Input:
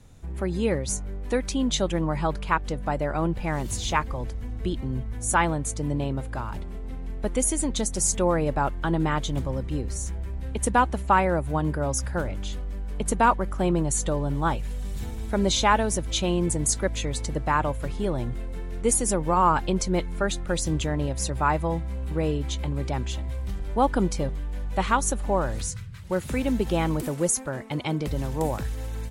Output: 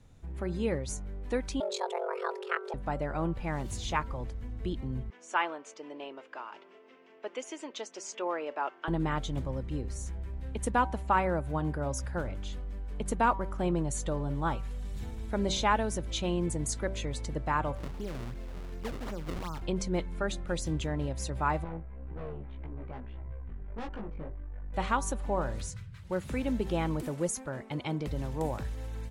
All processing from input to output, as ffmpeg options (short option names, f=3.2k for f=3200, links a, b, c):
-filter_complex "[0:a]asettb=1/sr,asplit=3[a][b][c];[a]atrim=end=1.604[d];[b]atrim=start=1.6:end=2.74,asetpts=PTS-STARTPTS,afade=t=in:d=0.004:c=qsin,afade=t=out:st=1.136:d=0.004:c=qsin,aeval=exprs='val(0)*sin(2*PI*22*n/s)':c=same,afreqshift=350[e];[c]atrim=start=2.736[f];[d][e]acrossfade=d=0.004:c1=hsin:c2=qsin[g];[g][f]acrossfade=d=0.004:c1=qsin:c2=hsin,asettb=1/sr,asplit=3[h][i][j];[h]atrim=end=5.104[k];[i]atrim=start=5.1:end=8.88,asetpts=PTS-STARTPTS,afade=t=in:d=0.004:c=qsin,afade=t=out:st=3.776:d=0.004:c=qsin,highpass=f=380:w=0.5412,highpass=f=380:w=1.3066,equalizer=f=530:t=q:w=4:g=-5,equalizer=f=2.8k:t=q:w=4:g=6,equalizer=f=4k:t=q:w=4:g=-6,lowpass=f=5.8k:w=0.5412,lowpass=f=5.8k:w=1.3066,bandreject=f=790:w=15[l];[j]atrim=start=8.876[m];[k][l]acrossfade=d=0.004:c1=hsin:c2=qsin[n];[n][m]acrossfade=d=0.004:c1=qsin:c2=hsin,asettb=1/sr,asplit=3[o][p][q];[o]atrim=end=17.754[r];[p]atrim=start=17.75:end=19.62,asetpts=PTS-STARTPTS,afade=t=in:d=0.004:c=qsin,afade=t=out:st=1.866:d=0.004:c=qsin,acrossover=split=100|260[s][t][u];[s]acompressor=threshold=-32dB:ratio=4[v];[t]acompressor=threshold=-38dB:ratio=4[w];[u]acompressor=threshold=-34dB:ratio=4[x];[v][w][x]amix=inputs=3:normalize=0,acrusher=samples=31:mix=1:aa=0.000001:lfo=1:lforange=49.6:lforate=2.7[y];[q]atrim=start=19.616[z];[r][y]acrossfade=d=0.004:c1=hsin:c2=qsin[aa];[aa][z]acrossfade=d=0.004:c1=qsin:c2=hsin,asettb=1/sr,asplit=3[ab][ac][ad];[ab]atrim=end=21.644[ae];[ac]atrim=start=21.64:end=24.74,asetpts=PTS-STARTPTS,afade=t=in:d=0.004:c=qsin,afade=t=out:st=3.096:d=0.004:c=qsin,lowpass=f=2.1k:w=0.5412,lowpass=f=2.1k:w=1.3066,aeval=exprs='(tanh(22.4*val(0)+0.6)-tanh(0.6))/22.4':c=same,flanger=delay=17:depth=3:speed=1.8[af];[ad]atrim=start=24.736[ag];[ae][af]acrossfade=d=0.004:c1=hsin:c2=qsin[ah];[ah][ag]acrossfade=d=0.004:c1=qsin:c2=hsin,highshelf=f=7.2k:g=-8.5,bandreject=f=192.8:t=h:w=4,bandreject=f=385.6:t=h:w=4,bandreject=f=578.4:t=h:w=4,bandreject=f=771.2:t=h:w=4,bandreject=f=964:t=h:w=4,bandreject=f=1.1568k:t=h:w=4,bandreject=f=1.3496k:t=h:w=4,bandreject=f=1.5424k:t=h:w=4,volume=-6dB"